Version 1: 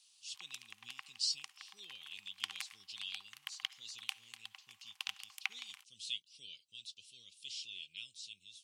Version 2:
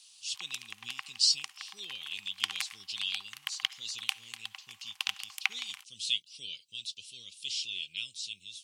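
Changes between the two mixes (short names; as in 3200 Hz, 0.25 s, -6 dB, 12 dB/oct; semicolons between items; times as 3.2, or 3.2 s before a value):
speech +10.0 dB; background +8.5 dB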